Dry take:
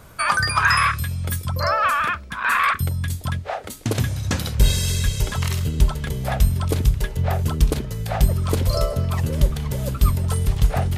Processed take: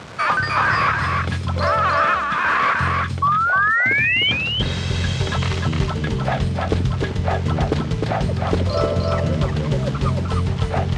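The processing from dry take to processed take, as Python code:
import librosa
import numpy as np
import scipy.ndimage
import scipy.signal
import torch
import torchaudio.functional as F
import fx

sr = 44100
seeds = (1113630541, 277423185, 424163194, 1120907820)

p1 = fx.delta_mod(x, sr, bps=64000, step_db=-34.5)
p2 = fx.spec_paint(p1, sr, seeds[0], shape='rise', start_s=3.22, length_s=1.1, low_hz=1100.0, high_hz=3200.0, level_db=-13.0)
p3 = np.clip(p2, -10.0 ** (-34.5 / 20.0), 10.0 ** (-34.5 / 20.0))
p4 = p2 + F.gain(torch.from_numpy(p3), -4.5).numpy()
p5 = fx.rider(p4, sr, range_db=5, speed_s=0.5)
p6 = scipy.signal.sosfilt(scipy.signal.butter(2, 120.0, 'highpass', fs=sr, output='sos'), p5)
p7 = fx.air_absorb(p6, sr, metres=130.0)
p8 = p7 + fx.echo_single(p7, sr, ms=305, db=-3.5, dry=0)
y = fx.doppler_dist(p8, sr, depth_ms=0.14)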